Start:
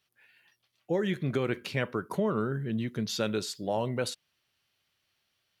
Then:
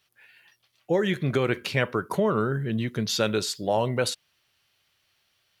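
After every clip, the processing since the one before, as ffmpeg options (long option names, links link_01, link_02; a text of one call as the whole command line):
ffmpeg -i in.wav -af "equalizer=frequency=230:width=0.92:gain=-4,volume=7dB" out.wav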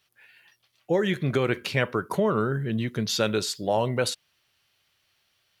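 ffmpeg -i in.wav -af anull out.wav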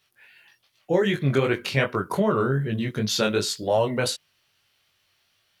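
ffmpeg -i in.wav -af "flanger=delay=19:depth=3.8:speed=2.6,volume=5dB" out.wav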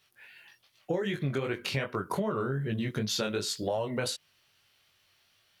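ffmpeg -i in.wav -af "acompressor=threshold=-28dB:ratio=6" out.wav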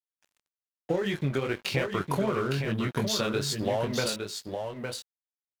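ffmpeg -i in.wav -af "aeval=exprs='sgn(val(0))*max(abs(val(0))-0.00531,0)':channel_layout=same,aecho=1:1:860:0.501,volume=3.5dB" out.wav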